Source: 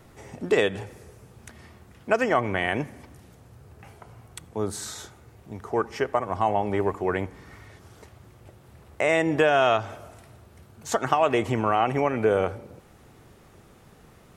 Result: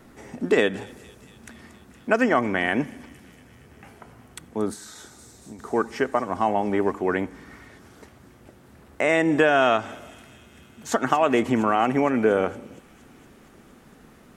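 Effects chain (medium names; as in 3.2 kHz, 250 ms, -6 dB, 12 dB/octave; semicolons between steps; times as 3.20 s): feedback echo behind a high-pass 232 ms, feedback 76%, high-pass 4.7 kHz, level -12.5 dB; 4.73–5.59 s: compression 4:1, threshold -41 dBFS, peak gain reduction 8 dB; fifteen-band graphic EQ 100 Hz -8 dB, 250 Hz +9 dB, 1.6 kHz +4 dB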